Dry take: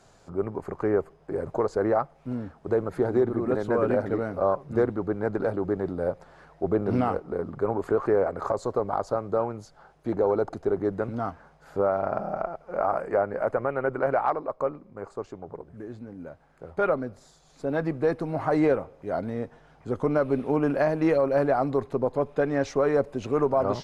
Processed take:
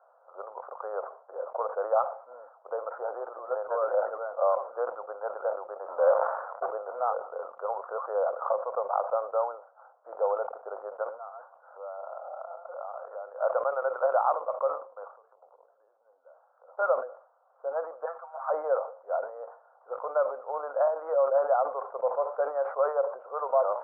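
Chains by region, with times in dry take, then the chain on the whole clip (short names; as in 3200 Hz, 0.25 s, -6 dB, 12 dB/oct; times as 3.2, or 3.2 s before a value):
5.86–6.71 sample leveller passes 3 + sustainer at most 47 dB/s
11.04–13.4 reverse delay 0.126 s, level -12 dB + compressor 5:1, threshold -35 dBFS
15.13–16.68 compressor 16:1, threshold -46 dBFS + notches 50/100/150/200/250/300/350/400/450 Hz
18.05–18.5 HPF 1200 Hz + comb 7.5 ms, depth 89%
whole clip: Chebyshev band-pass 510–1400 Hz, order 4; sustainer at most 120 dB/s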